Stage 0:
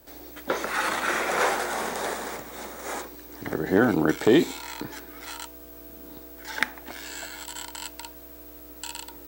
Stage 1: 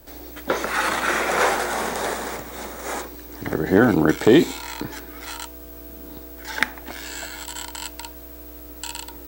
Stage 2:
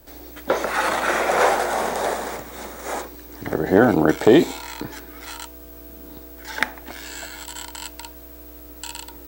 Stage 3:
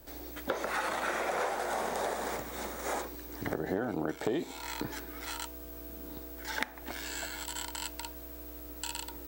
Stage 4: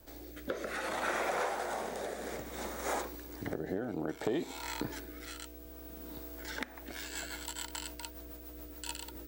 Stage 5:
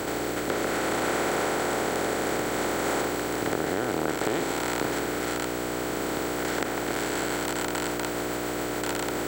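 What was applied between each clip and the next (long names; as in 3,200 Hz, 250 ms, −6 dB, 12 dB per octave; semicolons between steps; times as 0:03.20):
low-shelf EQ 96 Hz +8 dB; level +4 dB
dynamic equaliser 650 Hz, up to +7 dB, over −35 dBFS, Q 1.3; level −1.5 dB
downward compressor 6 to 1, threshold −26 dBFS, peak gain reduction 16.5 dB; level −4 dB
rotating-speaker cabinet horn 0.6 Hz, later 7 Hz, at 0:06.31
compressor on every frequency bin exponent 0.2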